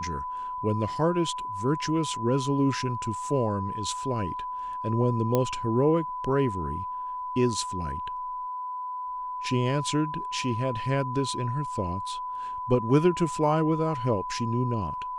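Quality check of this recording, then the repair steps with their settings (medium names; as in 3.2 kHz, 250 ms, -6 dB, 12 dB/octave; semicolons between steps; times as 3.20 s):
whine 1 kHz -31 dBFS
5.35 s: pop -11 dBFS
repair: de-click; band-stop 1 kHz, Q 30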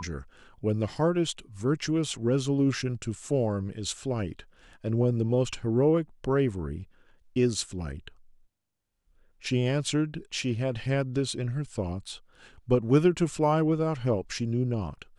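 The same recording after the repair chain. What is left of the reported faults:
nothing left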